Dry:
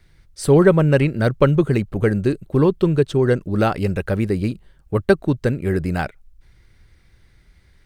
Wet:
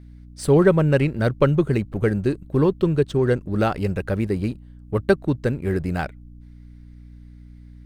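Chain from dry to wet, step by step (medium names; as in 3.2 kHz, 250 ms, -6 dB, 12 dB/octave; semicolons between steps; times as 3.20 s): in parallel at -3.5 dB: hysteresis with a dead band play -29 dBFS; on the sum: hum 60 Hz, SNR 21 dB; trim -7 dB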